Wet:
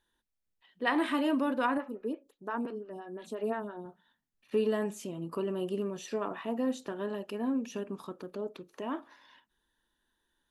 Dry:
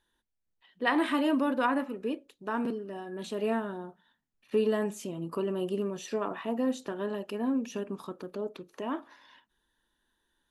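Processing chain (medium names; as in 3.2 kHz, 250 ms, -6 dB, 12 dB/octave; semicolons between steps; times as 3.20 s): 1.77–3.86 s: lamp-driven phase shifter 5.8 Hz; trim -2 dB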